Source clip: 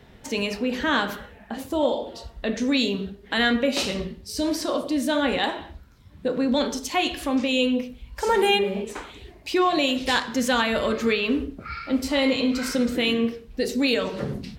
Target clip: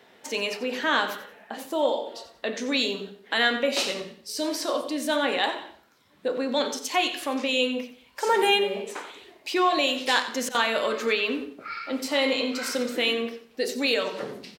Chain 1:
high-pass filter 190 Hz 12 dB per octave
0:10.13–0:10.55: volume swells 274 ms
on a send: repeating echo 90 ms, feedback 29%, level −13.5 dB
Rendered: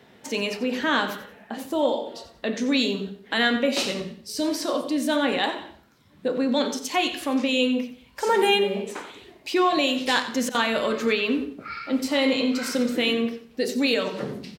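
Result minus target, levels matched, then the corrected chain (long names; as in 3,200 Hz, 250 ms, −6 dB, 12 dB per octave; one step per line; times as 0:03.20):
250 Hz band +4.5 dB
high-pass filter 390 Hz 12 dB per octave
0:10.13–0:10.55: volume swells 274 ms
on a send: repeating echo 90 ms, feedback 29%, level −13.5 dB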